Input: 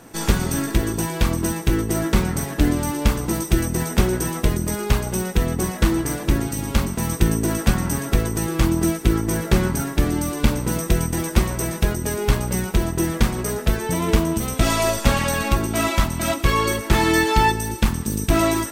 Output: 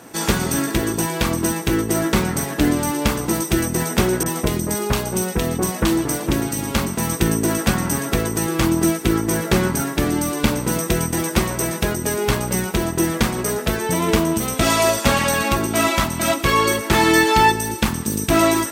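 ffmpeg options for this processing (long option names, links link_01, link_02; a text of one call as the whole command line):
ffmpeg -i in.wav -filter_complex "[0:a]highpass=frequency=180:poles=1,asettb=1/sr,asplit=3[link_01][link_02][link_03];[link_01]atrim=end=4.234[link_04];[link_02]atrim=start=4.23:end=6.42,asetpts=PTS-STARTPTS,afade=type=in:duration=0.004:curve=qsin,afade=type=out:start_time=2.186:duration=0.004:curve=qsin,acrossover=split=1900[link_05][link_06];[link_06]adelay=30[link_07];[link_05][link_07]amix=inputs=2:normalize=0,atrim=end_sample=96579[link_08];[link_03]atrim=start=6.416[link_09];[link_04][link_08]acrossfade=duration=0.004:curve1=hsin:curve2=qsin[link_10];[link_10][link_09]acrossfade=duration=0.004:curve1=qsin:curve2=hsin,volume=4dB" out.wav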